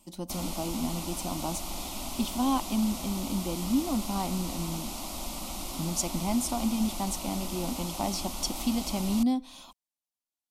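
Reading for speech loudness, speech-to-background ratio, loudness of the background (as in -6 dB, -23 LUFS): -31.5 LUFS, 5.0 dB, -36.5 LUFS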